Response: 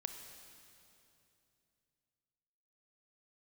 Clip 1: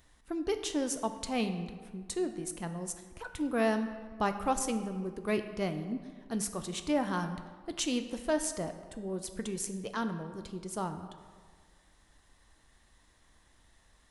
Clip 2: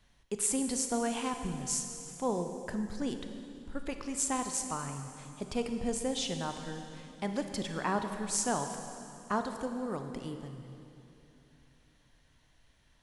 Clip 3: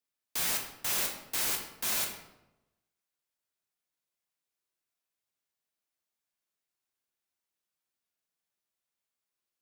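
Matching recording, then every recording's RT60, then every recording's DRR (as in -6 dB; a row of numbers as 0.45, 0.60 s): 2; 1.6, 2.8, 0.95 s; 7.5, 6.0, 1.0 dB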